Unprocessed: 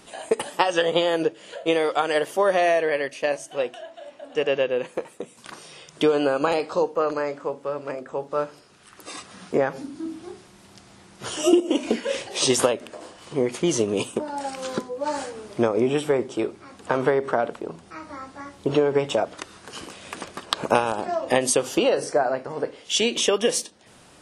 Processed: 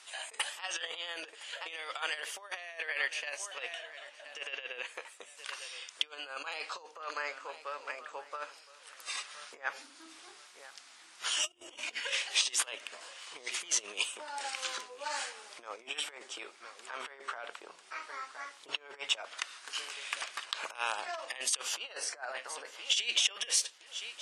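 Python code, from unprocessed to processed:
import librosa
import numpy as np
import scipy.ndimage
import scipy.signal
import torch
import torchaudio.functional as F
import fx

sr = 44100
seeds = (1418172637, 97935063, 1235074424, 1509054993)

y = fx.octave_divider(x, sr, octaves=2, level_db=2.0, at=(10.14, 12.45))
y = scipy.signal.sosfilt(scipy.signal.butter(2, 10000.0, 'lowpass', fs=sr, output='sos'), y)
y = fx.echo_feedback(y, sr, ms=1016, feedback_pct=27, wet_db=-19)
y = fx.over_compress(y, sr, threshold_db=-25.0, ratio=-0.5)
y = scipy.signal.sosfilt(scipy.signal.butter(2, 1400.0, 'highpass', fs=sr, output='sos'), y)
y = fx.dynamic_eq(y, sr, hz=2500.0, q=1.2, threshold_db=-44.0, ratio=4.0, max_db=4)
y = y * 10.0 ** (-4.5 / 20.0)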